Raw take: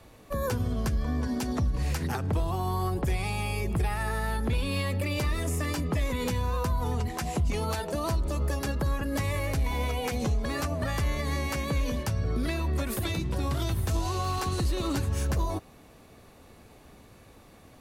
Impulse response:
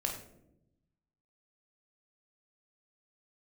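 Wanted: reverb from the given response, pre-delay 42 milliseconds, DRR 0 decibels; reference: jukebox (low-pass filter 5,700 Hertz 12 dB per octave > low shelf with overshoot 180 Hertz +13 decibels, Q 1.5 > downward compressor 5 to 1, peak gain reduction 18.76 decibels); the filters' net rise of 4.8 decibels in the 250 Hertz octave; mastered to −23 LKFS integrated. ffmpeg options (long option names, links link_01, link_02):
-filter_complex "[0:a]equalizer=frequency=250:width_type=o:gain=3,asplit=2[link_01][link_02];[1:a]atrim=start_sample=2205,adelay=42[link_03];[link_02][link_03]afir=irnorm=-1:irlink=0,volume=-3dB[link_04];[link_01][link_04]amix=inputs=2:normalize=0,lowpass=5700,lowshelf=frequency=180:width_type=q:width=1.5:gain=13,acompressor=threshold=-22dB:ratio=5,volume=2.5dB"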